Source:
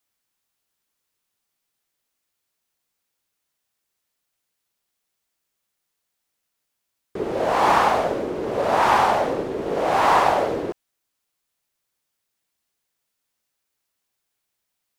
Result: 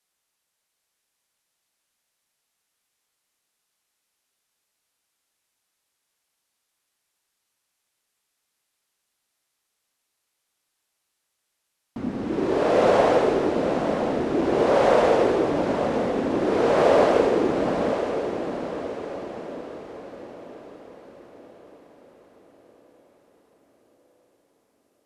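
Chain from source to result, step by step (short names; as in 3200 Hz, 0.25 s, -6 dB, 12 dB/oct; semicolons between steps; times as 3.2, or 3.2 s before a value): low shelf 390 Hz -6 dB; diffused feedback echo 0.539 s, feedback 49%, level -7 dB; wide varispeed 0.598×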